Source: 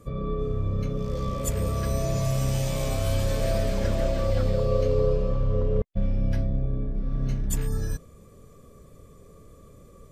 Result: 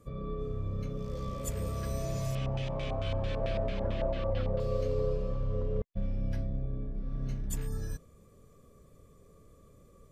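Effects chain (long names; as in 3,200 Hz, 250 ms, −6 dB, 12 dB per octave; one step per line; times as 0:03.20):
0:02.35–0:04.60: auto-filter low-pass square 4.5 Hz 910–3,000 Hz
level −8 dB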